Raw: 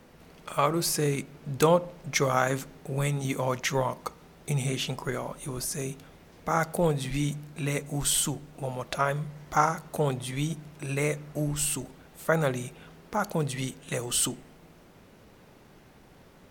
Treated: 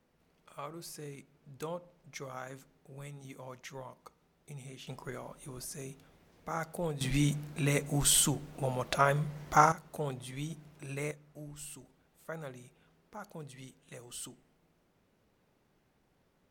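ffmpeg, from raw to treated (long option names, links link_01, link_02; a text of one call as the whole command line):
ffmpeg -i in.wav -af "asetnsamples=nb_out_samples=441:pad=0,asendcmd='4.87 volume volume -10.5dB;7.01 volume volume 0dB;9.72 volume volume -9.5dB;11.11 volume volume -17.5dB',volume=-18.5dB" out.wav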